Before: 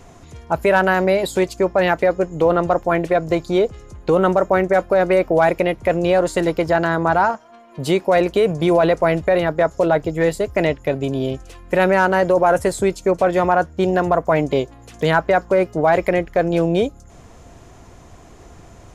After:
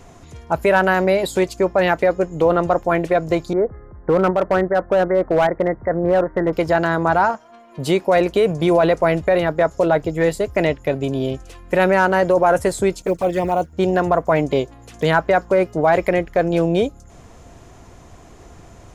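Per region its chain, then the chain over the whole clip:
3.53–6.53 s: steep low-pass 2 kHz 96 dB/octave + volume shaper 155 bpm, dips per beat 1, -4 dB, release 282 ms + hard clipper -10 dBFS
13.02–13.73 s: companding laws mixed up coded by A + treble shelf 5.3 kHz +3.5 dB + touch-sensitive flanger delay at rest 5.2 ms, full sweep at -11.5 dBFS
whole clip: none

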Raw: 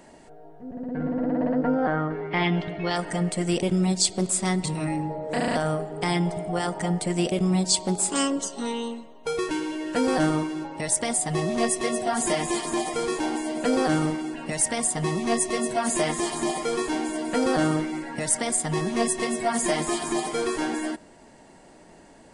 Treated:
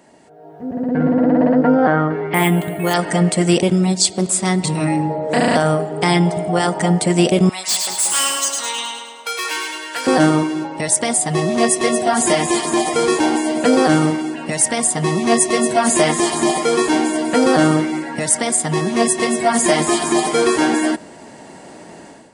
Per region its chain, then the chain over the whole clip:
2.34–2.94 s: distance through air 160 m + careless resampling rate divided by 4×, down filtered, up hold
7.49–10.07 s: high-pass 1.3 kHz + overload inside the chain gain 26.5 dB + two-band feedback delay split 1.2 kHz, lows 183 ms, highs 105 ms, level -4 dB
whole clip: high-pass 100 Hz; level rider gain up to 13 dB

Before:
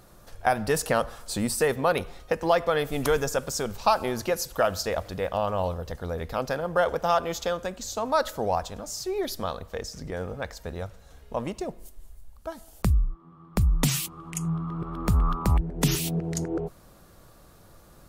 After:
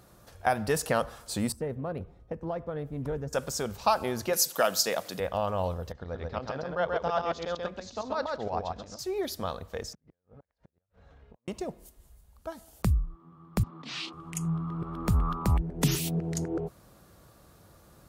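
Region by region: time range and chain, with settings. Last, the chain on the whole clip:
1.52–3.33 s: FFT filter 140 Hz 0 dB, 430 Hz -7 dB, 4.3 kHz -24 dB + loudspeaker Doppler distortion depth 0.27 ms
4.33–5.20 s: high-pass 160 Hz 24 dB/octave + treble shelf 2.9 kHz +11.5 dB
5.92–8.99 s: low-pass 5.2 kHz 24 dB/octave + tremolo saw up 8.6 Hz, depth 80% + delay 133 ms -3 dB
9.93–11.48 s: low-pass 2.4 kHz + compression 16:1, threshold -44 dBFS + inverted gate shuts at -39 dBFS, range -35 dB
13.63–14.13 s: elliptic band-pass 250–4400 Hz, stop band 60 dB + compressor with a negative ratio -37 dBFS + doubling 31 ms -6.5 dB
whole clip: high-pass 59 Hz; bass shelf 150 Hz +3 dB; trim -3 dB

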